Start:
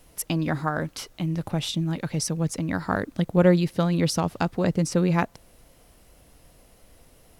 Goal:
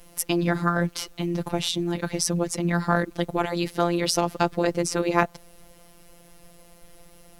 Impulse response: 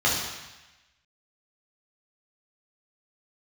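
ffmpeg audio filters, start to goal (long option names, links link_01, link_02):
-af "afftfilt=real='re*lt(hypot(re,im),0.501)':imag='im*lt(hypot(re,im),0.501)':win_size=1024:overlap=0.75,afftfilt=real='hypot(re,im)*cos(PI*b)':imag='0':win_size=1024:overlap=0.75,volume=7dB"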